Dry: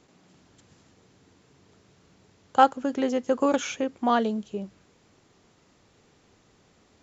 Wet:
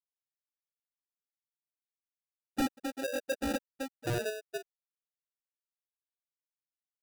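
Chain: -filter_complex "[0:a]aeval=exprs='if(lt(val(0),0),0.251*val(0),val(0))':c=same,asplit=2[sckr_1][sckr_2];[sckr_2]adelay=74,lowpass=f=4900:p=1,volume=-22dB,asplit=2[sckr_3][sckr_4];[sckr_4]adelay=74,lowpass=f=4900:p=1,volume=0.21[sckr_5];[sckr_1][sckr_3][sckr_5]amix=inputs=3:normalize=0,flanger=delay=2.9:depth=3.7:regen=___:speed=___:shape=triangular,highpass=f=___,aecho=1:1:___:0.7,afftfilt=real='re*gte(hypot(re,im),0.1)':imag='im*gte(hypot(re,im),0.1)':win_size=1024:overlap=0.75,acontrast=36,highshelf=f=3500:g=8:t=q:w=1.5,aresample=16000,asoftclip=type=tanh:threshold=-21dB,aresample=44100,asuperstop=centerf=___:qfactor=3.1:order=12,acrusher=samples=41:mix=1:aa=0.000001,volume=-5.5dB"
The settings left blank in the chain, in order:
-51, 1.1, 51, 2.4, 5100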